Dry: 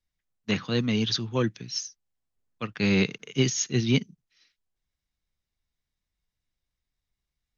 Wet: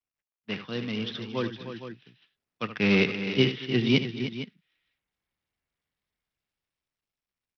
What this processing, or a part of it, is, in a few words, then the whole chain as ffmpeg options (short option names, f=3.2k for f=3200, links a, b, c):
Bluetooth headset: -af "highpass=f=200:p=1,aecho=1:1:75|228|305|461:0.251|0.106|0.266|0.211,dynaudnorm=f=220:g=17:m=10dB,aresample=8000,aresample=44100,volume=-5.5dB" -ar 44100 -c:a sbc -b:a 64k